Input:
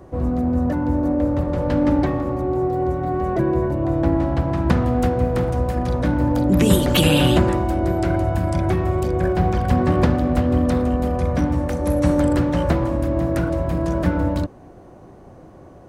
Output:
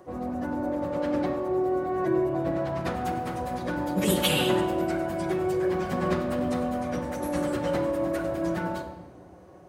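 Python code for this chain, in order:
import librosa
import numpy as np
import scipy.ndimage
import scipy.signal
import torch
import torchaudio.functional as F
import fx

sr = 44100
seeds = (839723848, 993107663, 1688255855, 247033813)

y = fx.high_shelf(x, sr, hz=8200.0, db=3.5)
y = fx.stretch_vocoder_free(y, sr, factor=0.61)
y = fx.highpass(y, sr, hz=430.0, slope=6)
y = fx.room_shoebox(y, sr, seeds[0], volume_m3=1600.0, walls='mixed', distance_m=0.98)
y = F.gain(torch.from_numpy(y), -2.0).numpy()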